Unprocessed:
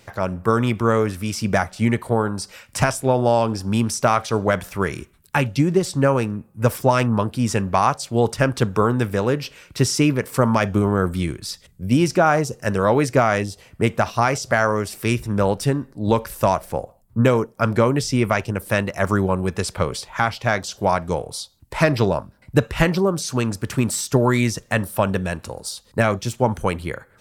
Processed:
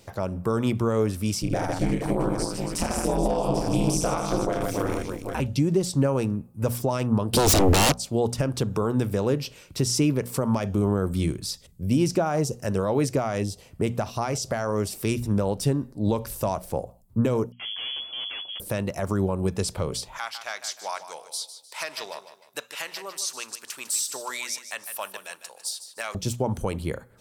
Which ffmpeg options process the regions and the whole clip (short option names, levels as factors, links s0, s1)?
-filter_complex "[0:a]asettb=1/sr,asplit=3[s0][s1][s2];[s0]atrim=end=1.424[s3];[s1]atrim=start=1.42:end=5.4,asetpts=PTS-STARTPTS,afade=t=in:d=0.004:c=qsin,afade=t=out:st=3.976:d=0.004:c=qsin,aeval=exprs='val(0)*sin(2*PI*85*n/s)':c=same,aecho=1:1:30|78|154.8|277.7|474.3|788.9:0.794|0.631|0.501|0.398|0.316|0.251,atrim=end_sample=175518[s4];[s2]atrim=start=5.396[s5];[s3][s4]acrossfade=d=0.004:c1=hsin:c2=qsin[s6];[s6][s5]acrossfade=d=0.004:c1=qsin:c2=hsin,asettb=1/sr,asplit=3[s7][s8][s9];[s7]atrim=end=7.334[s10];[s8]atrim=start=7.33:end=7.92,asetpts=PTS-STARTPTS,afade=t=in:d=0.004:c=qsin,afade=t=out:st=0.586:d=0.004:c=qsin,lowshelf=f=83:g=10,acompressor=threshold=0.1:ratio=2:attack=3.2:release=140:knee=1:detection=peak,aeval=exprs='0.376*sin(PI/2*8.91*val(0)/0.376)':c=same[s11];[s9]atrim=start=7.916[s12];[s10][s11]acrossfade=d=0.004:c1=hsin:c2=qsin[s13];[s13][s12]acrossfade=d=0.004:c1=qsin:c2=hsin,asettb=1/sr,asplit=3[s14][s15][s16];[s14]atrim=end=17.524[s17];[s15]atrim=start=17.52:end=18.6,asetpts=PTS-STARTPTS,afade=t=in:d=0.004:c=qsin,afade=t=out:st=1.076:d=0.004:c=qsin,highpass=f=42:p=1,aeval=exprs='(tanh(28.2*val(0)+0.8)-tanh(0.8))/28.2':c=same,lowpass=f=2900:t=q:w=0.5098,lowpass=f=2900:t=q:w=0.6013,lowpass=f=2900:t=q:w=0.9,lowpass=f=2900:t=q:w=2.563,afreqshift=-3400[s18];[s16]atrim=start=18.596[s19];[s17][s18]acrossfade=d=0.004:c1=hsin:c2=qsin[s20];[s20][s19]acrossfade=d=0.004:c1=qsin:c2=hsin,asettb=1/sr,asplit=3[s21][s22][s23];[s21]atrim=end=20.184[s24];[s22]atrim=start=20.18:end=26.15,asetpts=PTS-STARTPTS,afade=t=in:d=0.004:c=qsin,afade=t=out:st=5.966:d=0.004:c=qsin,highpass=1400,aecho=1:1:152|304|456|608:0.251|0.0929|0.0344|0.0127,atrim=end_sample=263277[s25];[s23]atrim=start=26.146[s26];[s24][s25]acrossfade=d=0.004:c1=hsin:c2=qsin[s27];[s27][s26]acrossfade=d=0.004:c1=qsin:c2=hsin,bandreject=f=60:t=h:w=6,bandreject=f=120:t=h:w=6,bandreject=f=180:t=h:w=6,bandreject=f=240:t=h:w=6,alimiter=limit=0.251:level=0:latency=1:release=138,equalizer=f=1700:t=o:w=1.5:g=-9"